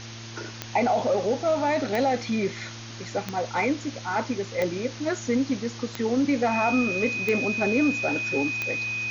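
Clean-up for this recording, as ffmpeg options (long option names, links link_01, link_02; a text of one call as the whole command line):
ffmpeg -i in.wav -af "adeclick=threshold=4,bandreject=frequency=113.5:width_type=h:width=4,bandreject=frequency=227:width_type=h:width=4,bandreject=frequency=340.5:width_type=h:width=4,bandreject=frequency=2500:width=30,afftdn=noise_reduction=30:noise_floor=-39" out.wav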